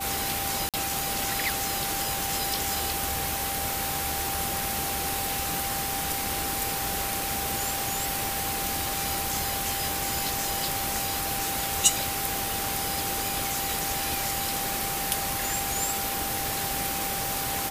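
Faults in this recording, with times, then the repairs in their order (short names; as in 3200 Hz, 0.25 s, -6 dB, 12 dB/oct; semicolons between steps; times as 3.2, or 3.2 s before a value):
crackle 21/s -37 dBFS
tone 790 Hz -34 dBFS
0.69–0.74 gap 47 ms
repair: de-click; notch 790 Hz, Q 30; interpolate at 0.69, 47 ms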